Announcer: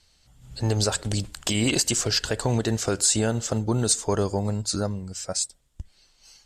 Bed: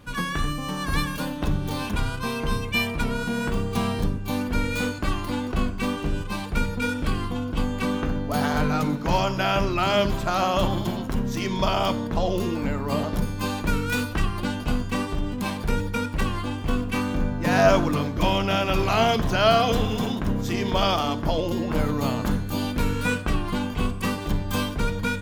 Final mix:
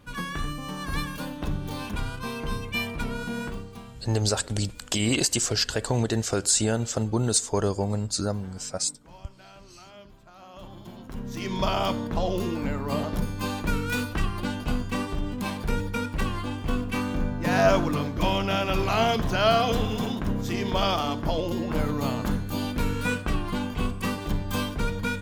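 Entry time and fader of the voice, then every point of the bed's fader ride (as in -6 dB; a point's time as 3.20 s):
3.45 s, -1.0 dB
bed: 3.41 s -5 dB
4.07 s -27 dB
10.35 s -27 dB
11.56 s -2.5 dB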